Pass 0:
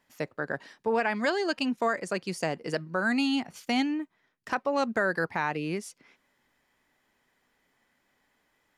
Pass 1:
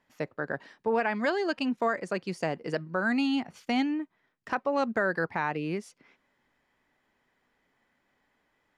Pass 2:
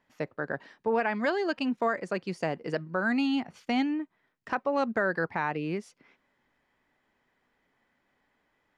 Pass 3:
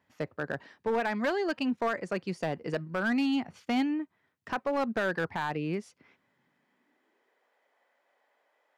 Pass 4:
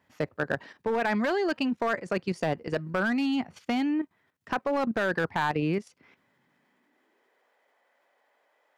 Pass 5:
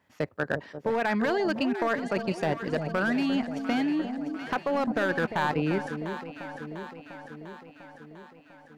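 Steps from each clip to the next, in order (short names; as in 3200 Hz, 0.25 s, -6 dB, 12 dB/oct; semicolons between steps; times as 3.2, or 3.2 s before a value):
LPF 2900 Hz 6 dB/oct
high shelf 7400 Hz -7.5 dB
high-pass sweep 79 Hz -> 570 Hz, 5.98–7.5; overloaded stage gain 22 dB; gain -1 dB
level quantiser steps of 11 dB; gain +7 dB
echo with dull and thin repeats by turns 0.349 s, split 850 Hz, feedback 77%, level -8 dB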